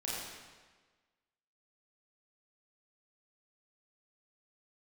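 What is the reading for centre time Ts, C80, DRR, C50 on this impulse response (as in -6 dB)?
0.105 s, 0.0 dB, -7.5 dB, -2.5 dB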